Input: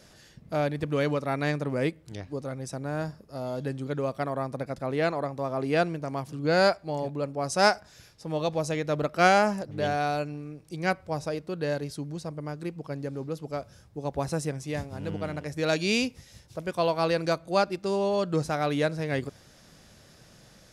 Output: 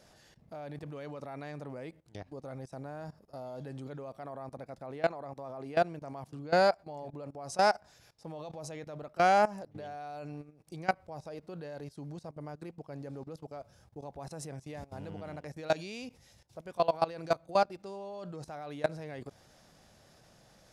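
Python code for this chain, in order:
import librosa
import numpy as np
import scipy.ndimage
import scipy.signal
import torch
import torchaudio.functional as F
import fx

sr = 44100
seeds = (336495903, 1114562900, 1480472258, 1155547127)

y = fx.peak_eq(x, sr, hz=760.0, db=7.0, octaves=0.9)
y = fx.level_steps(y, sr, step_db=19)
y = y * 10.0 ** (-4.0 / 20.0)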